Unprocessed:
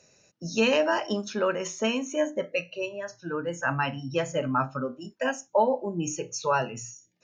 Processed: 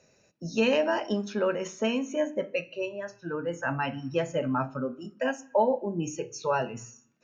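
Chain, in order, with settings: high shelf 3700 Hz -9 dB; on a send at -14.5 dB: reverb RT60 0.70 s, pre-delay 3 ms; on the sum: dynamic EQ 1200 Hz, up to -5 dB, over -40 dBFS, Q 2

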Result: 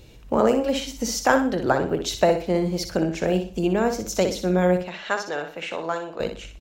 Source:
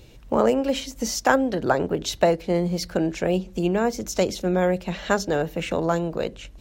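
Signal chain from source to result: 4.81–6.2 band-pass 1900 Hz, Q 0.51; on a send: feedback echo 61 ms, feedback 32%, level -8 dB

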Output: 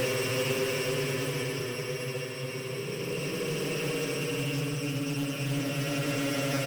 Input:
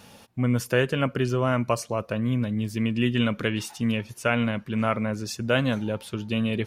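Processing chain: sample sorter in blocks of 16 samples; rotary speaker horn 1.1 Hz; compressor 2.5:1, threshold -30 dBFS, peak gain reduction 8.5 dB; echo 82 ms -9 dB; Paulstretch 28×, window 0.10 s, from 0.8; in parallel at -11 dB: wrapped overs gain 26.5 dB; on the sum: Doppler distortion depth 0.16 ms

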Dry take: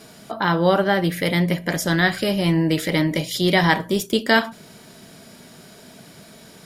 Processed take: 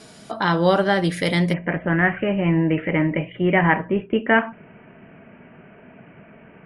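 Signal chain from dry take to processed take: steep low-pass 11000 Hz 96 dB/oct, from 1.52 s 2800 Hz

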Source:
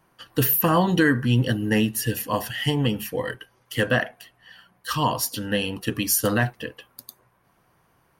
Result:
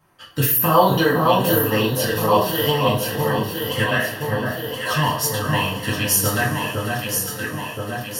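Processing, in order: 0.67–2.87 graphic EQ 125/250/500/1000/2000/4000/8000 Hz -6/-5/+11/+6/-10/+10/-7 dB; on a send: echo with dull and thin repeats by turns 0.511 s, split 1500 Hz, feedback 74%, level -2.5 dB; on the sum: dynamic EQ 460 Hz, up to -5 dB, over -28 dBFS, Q 0.77; two-slope reverb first 0.33 s, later 4.3 s, from -22 dB, DRR -4.5 dB; gain -2 dB

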